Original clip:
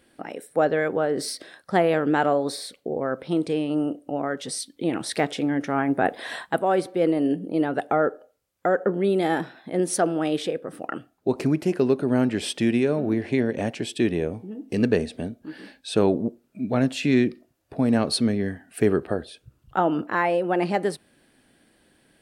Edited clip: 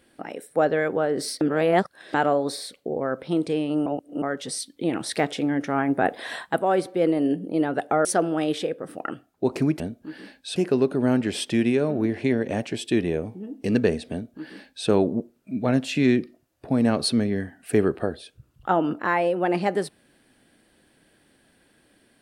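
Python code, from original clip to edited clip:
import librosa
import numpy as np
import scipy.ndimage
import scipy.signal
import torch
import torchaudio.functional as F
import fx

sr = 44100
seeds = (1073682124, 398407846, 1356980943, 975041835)

y = fx.edit(x, sr, fx.reverse_span(start_s=1.41, length_s=0.73),
    fx.reverse_span(start_s=3.86, length_s=0.36),
    fx.cut(start_s=8.05, length_s=1.84),
    fx.duplicate(start_s=15.2, length_s=0.76, to_s=11.64), tone=tone)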